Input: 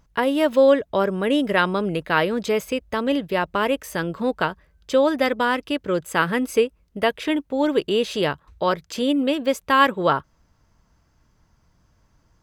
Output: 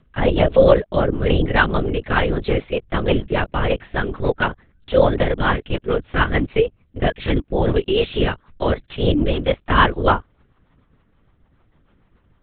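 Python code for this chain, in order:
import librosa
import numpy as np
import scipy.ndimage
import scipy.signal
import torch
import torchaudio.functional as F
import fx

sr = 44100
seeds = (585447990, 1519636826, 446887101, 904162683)

y = fx.lpc_vocoder(x, sr, seeds[0], excitation='whisper', order=8)
y = fx.rotary(y, sr, hz=6.7)
y = F.gain(torch.from_numpy(y), 5.0).numpy()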